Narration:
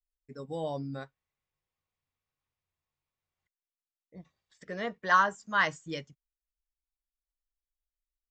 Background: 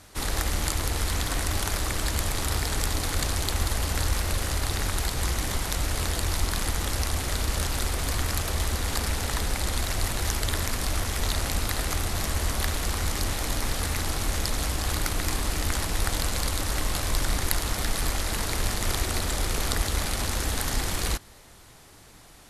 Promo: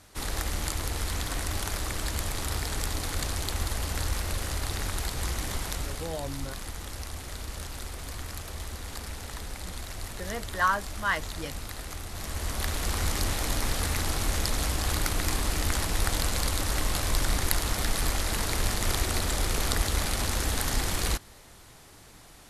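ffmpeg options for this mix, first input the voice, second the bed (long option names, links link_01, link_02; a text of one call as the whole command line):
ffmpeg -i stem1.wav -i stem2.wav -filter_complex "[0:a]adelay=5500,volume=-1.5dB[link_01];[1:a]volume=6dB,afade=type=out:start_time=5.67:duration=0.41:silence=0.473151,afade=type=in:start_time=12.09:duration=0.93:silence=0.316228[link_02];[link_01][link_02]amix=inputs=2:normalize=0" out.wav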